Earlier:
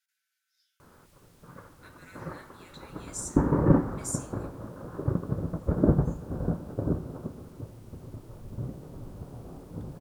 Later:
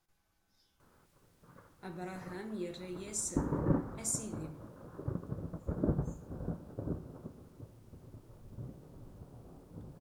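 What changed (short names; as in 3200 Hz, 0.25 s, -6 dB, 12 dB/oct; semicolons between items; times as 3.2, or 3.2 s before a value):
speech: remove brick-wall FIR high-pass 1300 Hz; background -10.0 dB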